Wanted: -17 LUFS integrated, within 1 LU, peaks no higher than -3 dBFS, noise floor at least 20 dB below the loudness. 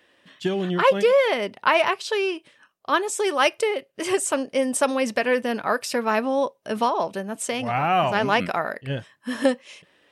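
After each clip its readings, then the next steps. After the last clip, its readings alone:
loudness -23.0 LUFS; peak level -6.0 dBFS; loudness target -17.0 LUFS
-> trim +6 dB; peak limiter -3 dBFS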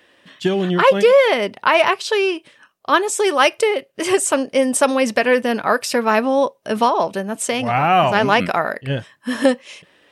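loudness -17.5 LUFS; peak level -3.0 dBFS; noise floor -56 dBFS

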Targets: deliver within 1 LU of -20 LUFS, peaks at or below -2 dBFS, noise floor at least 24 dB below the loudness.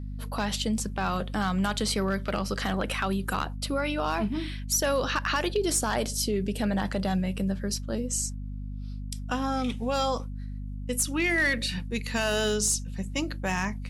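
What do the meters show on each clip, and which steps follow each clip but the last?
clipped samples 0.3%; clipping level -18.0 dBFS; hum 50 Hz; highest harmonic 250 Hz; hum level -33 dBFS; loudness -28.0 LUFS; peak level -18.0 dBFS; loudness target -20.0 LUFS
-> clip repair -18 dBFS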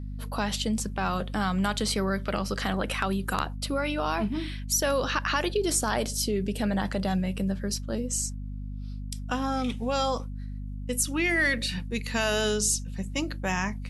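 clipped samples 0.0%; hum 50 Hz; highest harmonic 250 Hz; hum level -33 dBFS
-> hum notches 50/100/150/200/250 Hz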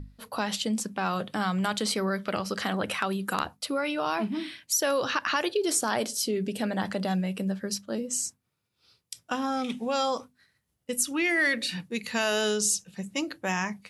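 hum not found; loudness -28.5 LUFS; peak level -9.0 dBFS; loudness target -20.0 LUFS
-> trim +8.5 dB; peak limiter -2 dBFS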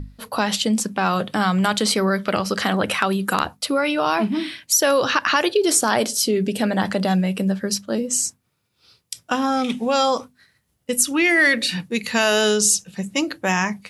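loudness -20.0 LUFS; peak level -2.0 dBFS; noise floor -69 dBFS

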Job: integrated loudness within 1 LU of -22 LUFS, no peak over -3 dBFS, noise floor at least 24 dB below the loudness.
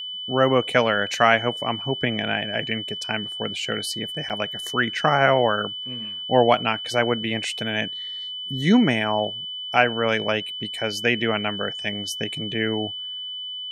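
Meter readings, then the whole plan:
dropouts 1; longest dropout 8.0 ms; steady tone 3 kHz; tone level -30 dBFS; loudness -23.0 LUFS; peak level -1.5 dBFS; loudness target -22.0 LUFS
-> interpolate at 4.29 s, 8 ms; band-stop 3 kHz, Q 30; trim +1 dB; peak limiter -3 dBFS

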